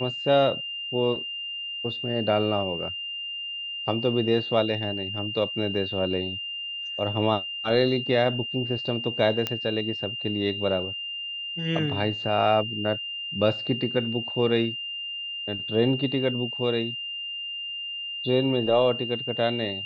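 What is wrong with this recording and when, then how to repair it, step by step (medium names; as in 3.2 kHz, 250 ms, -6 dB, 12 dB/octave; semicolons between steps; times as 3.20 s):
whine 2.8 kHz -31 dBFS
9.47 s: pop -12 dBFS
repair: de-click; band-stop 2.8 kHz, Q 30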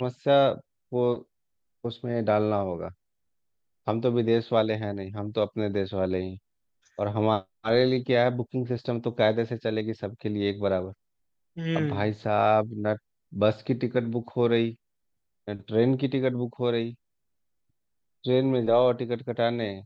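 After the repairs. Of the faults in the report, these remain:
nothing left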